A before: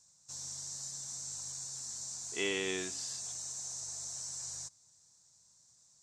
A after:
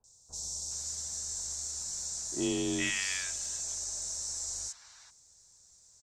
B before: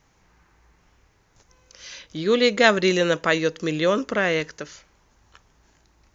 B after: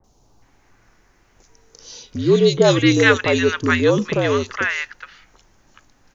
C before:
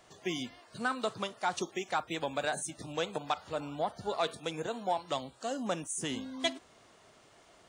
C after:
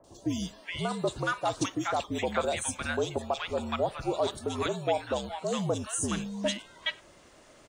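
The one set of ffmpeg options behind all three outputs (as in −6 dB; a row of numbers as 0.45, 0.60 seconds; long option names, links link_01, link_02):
-filter_complex "[0:a]afreqshift=-60,acrossover=split=1000|3500[link_01][link_02][link_03];[link_03]adelay=40[link_04];[link_02]adelay=420[link_05];[link_01][link_05][link_04]amix=inputs=3:normalize=0,volume=5.5dB"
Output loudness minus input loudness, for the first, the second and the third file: +4.5, +4.0, +4.0 LU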